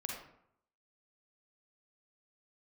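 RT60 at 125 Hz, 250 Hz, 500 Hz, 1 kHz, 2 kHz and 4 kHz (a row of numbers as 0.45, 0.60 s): 0.80, 0.75, 0.70, 0.70, 0.60, 0.40 s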